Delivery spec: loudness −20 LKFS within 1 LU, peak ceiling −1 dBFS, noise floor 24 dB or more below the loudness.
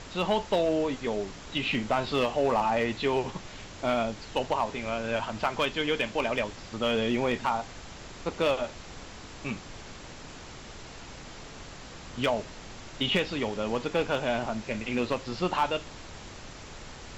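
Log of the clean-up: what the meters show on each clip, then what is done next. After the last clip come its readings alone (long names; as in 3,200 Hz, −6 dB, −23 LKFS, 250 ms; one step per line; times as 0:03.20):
share of clipped samples 0.3%; peaks flattened at −18.0 dBFS; background noise floor −45 dBFS; target noise floor −54 dBFS; integrated loudness −29.5 LKFS; sample peak −18.0 dBFS; target loudness −20.0 LKFS
→ clipped peaks rebuilt −18 dBFS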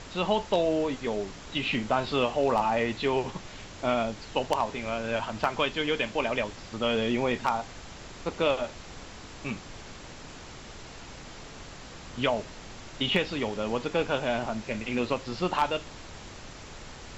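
share of clipped samples 0.0%; background noise floor −45 dBFS; target noise floor −53 dBFS
→ noise reduction from a noise print 8 dB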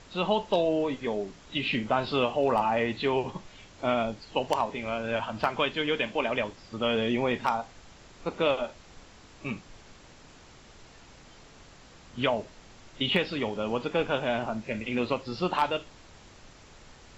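background noise floor −53 dBFS; integrated loudness −29.0 LKFS; sample peak −9.0 dBFS; target loudness −20.0 LKFS
→ level +9 dB
brickwall limiter −1 dBFS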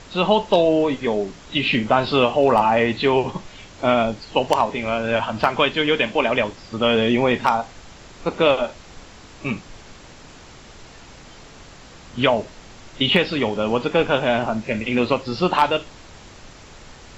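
integrated loudness −20.0 LKFS; sample peak −1.0 dBFS; background noise floor −44 dBFS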